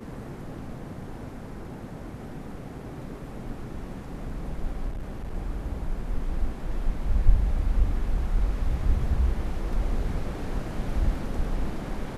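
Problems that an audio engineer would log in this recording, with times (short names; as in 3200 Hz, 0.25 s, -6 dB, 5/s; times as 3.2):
4.88–5.34 clipped -29.5 dBFS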